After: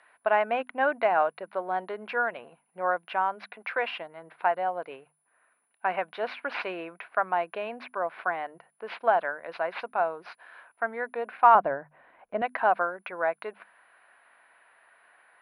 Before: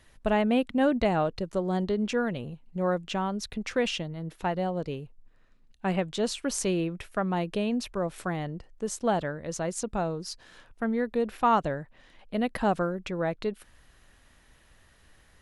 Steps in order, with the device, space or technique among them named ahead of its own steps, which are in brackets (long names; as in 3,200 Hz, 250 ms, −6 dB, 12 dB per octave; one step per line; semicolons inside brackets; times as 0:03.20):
0:03.44–0:03.97: high-pass filter 260 Hz
toy sound module (linearly interpolated sample-rate reduction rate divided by 4×; switching amplifier with a slow clock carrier 10,000 Hz; loudspeaker in its box 620–3,800 Hz, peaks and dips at 700 Hz +8 dB, 1,000 Hz +7 dB, 1,500 Hz +9 dB, 2,300 Hz +5 dB, 3,300 Hz −6 dB)
mains-hum notches 50/100/150/200/250 Hz
0:11.55–0:12.42: spectral tilt −4.5 dB per octave